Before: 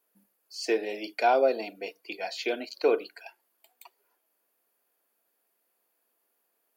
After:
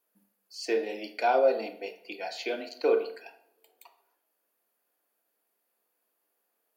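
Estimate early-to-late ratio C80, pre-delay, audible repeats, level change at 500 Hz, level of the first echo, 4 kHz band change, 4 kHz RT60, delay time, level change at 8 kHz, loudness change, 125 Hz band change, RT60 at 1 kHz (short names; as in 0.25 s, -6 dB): 14.5 dB, 3 ms, none, 0.0 dB, none, -2.5 dB, 0.55 s, none, n/a, -1.0 dB, n/a, 0.55 s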